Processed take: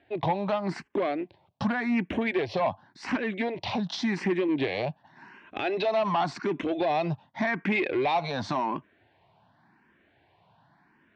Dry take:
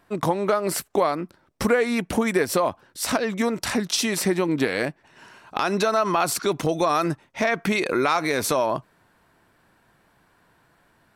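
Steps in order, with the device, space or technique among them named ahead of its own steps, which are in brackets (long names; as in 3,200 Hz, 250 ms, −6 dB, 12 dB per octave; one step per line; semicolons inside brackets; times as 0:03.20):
barber-pole phaser into a guitar amplifier (frequency shifter mixed with the dry sound +0.89 Hz; soft clipping −21 dBFS, distortion −13 dB; loudspeaker in its box 98–3,700 Hz, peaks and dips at 100 Hz +4 dB, 480 Hz −7 dB, 790 Hz +4 dB, 1,300 Hz −10 dB)
level +2 dB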